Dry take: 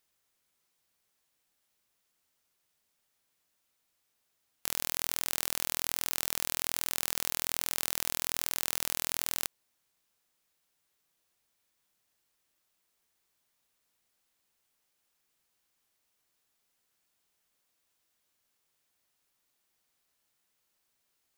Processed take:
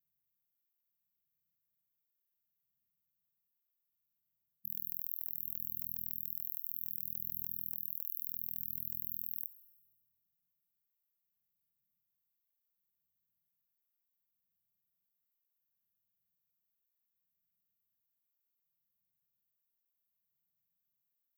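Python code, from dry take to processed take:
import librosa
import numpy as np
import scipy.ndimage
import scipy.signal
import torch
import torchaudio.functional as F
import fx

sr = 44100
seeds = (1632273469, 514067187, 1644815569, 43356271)

y = fx.brickwall_bandstop(x, sr, low_hz=210.0, high_hz=12000.0)
y = fx.rev_schroeder(y, sr, rt60_s=1.5, comb_ms=25, drr_db=17.0)
y = fx.flanger_cancel(y, sr, hz=0.68, depth_ms=2.5)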